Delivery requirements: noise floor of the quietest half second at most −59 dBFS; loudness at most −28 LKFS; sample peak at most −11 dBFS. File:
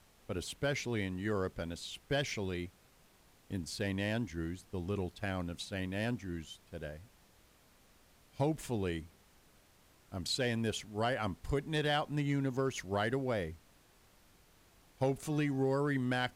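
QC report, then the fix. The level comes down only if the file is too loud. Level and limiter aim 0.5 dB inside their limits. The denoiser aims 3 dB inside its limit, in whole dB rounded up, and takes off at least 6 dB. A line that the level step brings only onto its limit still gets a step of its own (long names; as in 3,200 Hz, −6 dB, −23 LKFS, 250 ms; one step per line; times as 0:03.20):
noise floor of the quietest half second −65 dBFS: in spec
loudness −36.5 LKFS: in spec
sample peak −22.5 dBFS: in spec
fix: no processing needed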